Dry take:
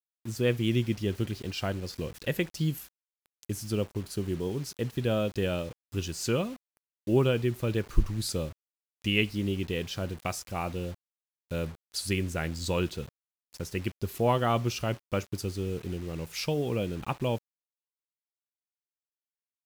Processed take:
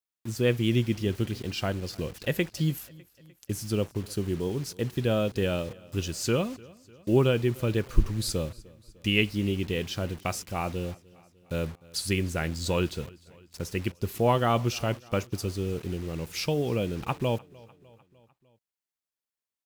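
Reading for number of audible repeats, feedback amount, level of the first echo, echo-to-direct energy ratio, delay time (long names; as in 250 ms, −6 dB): 3, 58%, −23.5 dB, −22.0 dB, 301 ms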